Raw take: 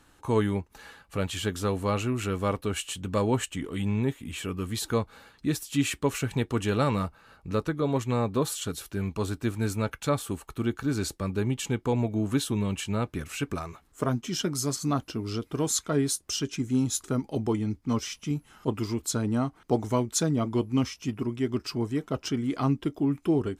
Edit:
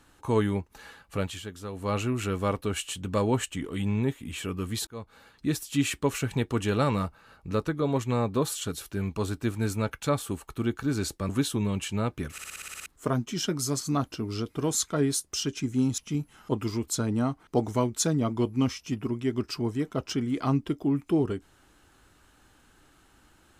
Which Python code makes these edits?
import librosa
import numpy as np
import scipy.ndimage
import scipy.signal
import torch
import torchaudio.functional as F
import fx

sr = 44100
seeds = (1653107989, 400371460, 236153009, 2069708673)

y = fx.edit(x, sr, fx.fade_down_up(start_s=1.19, length_s=0.78, db=-10.0, fade_s=0.25),
    fx.fade_in_span(start_s=4.87, length_s=0.71, curve='qsin'),
    fx.cut(start_s=11.29, length_s=0.96),
    fx.stutter_over(start_s=13.28, slice_s=0.06, count=9),
    fx.cut(start_s=16.94, length_s=1.2), tone=tone)